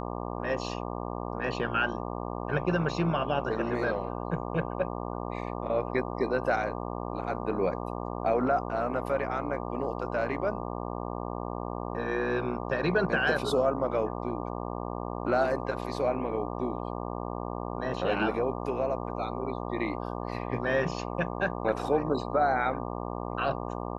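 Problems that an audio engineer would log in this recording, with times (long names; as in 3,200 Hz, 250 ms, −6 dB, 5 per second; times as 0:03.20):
mains buzz 60 Hz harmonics 20 −35 dBFS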